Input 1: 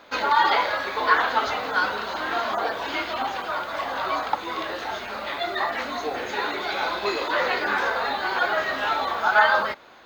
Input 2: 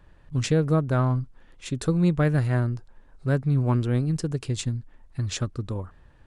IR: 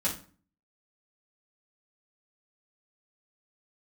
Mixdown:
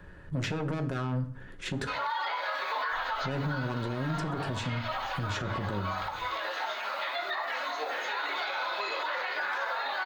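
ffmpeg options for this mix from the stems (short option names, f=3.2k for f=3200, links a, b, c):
-filter_complex "[0:a]highpass=680,adelay=1750,volume=-3dB,asplit=2[a][b];[b]volume=-10dB[c];[1:a]equalizer=f=100:t=o:w=0.67:g=6,equalizer=f=400:t=o:w=0.67:g=9,equalizer=f=1.6k:t=o:w=0.67:g=9,aeval=exprs='(tanh(15.8*val(0)+0.35)-tanh(0.35))/15.8':c=same,volume=1.5dB,asplit=3[d][e][f];[d]atrim=end=1.85,asetpts=PTS-STARTPTS,afade=t=out:st=1.846:d=0.004:c=hsin[g];[e]atrim=start=1.85:end=2.92,asetpts=PTS-STARTPTS,volume=0[h];[f]atrim=start=2.92,asetpts=PTS-STARTPTS,afade=t=in:d=0.004:c=hsin[i];[g][h][i]concat=n=3:v=0:a=1,asplit=3[j][k][l];[k]volume=-10dB[m];[l]apad=whole_len=520514[n];[a][n]sidechaincompress=threshold=-30dB:ratio=8:attack=16:release=1350[o];[2:a]atrim=start_sample=2205[p];[c][m]amix=inputs=2:normalize=0[q];[q][p]afir=irnorm=-1:irlink=0[r];[o][j][r]amix=inputs=3:normalize=0,acrossover=split=130|4800[s][t][u];[s]acompressor=threshold=-36dB:ratio=4[v];[t]acompressor=threshold=-24dB:ratio=4[w];[u]acompressor=threshold=-54dB:ratio=4[x];[v][w][x]amix=inputs=3:normalize=0,alimiter=limit=-23.5dB:level=0:latency=1:release=85"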